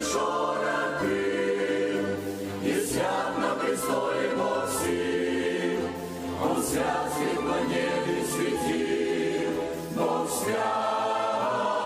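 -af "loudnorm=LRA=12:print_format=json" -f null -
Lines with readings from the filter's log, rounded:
"input_i" : "-27.4",
"input_tp" : "-13.0",
"input_lra" : "0.4",
"input_thresh" : "-37.4",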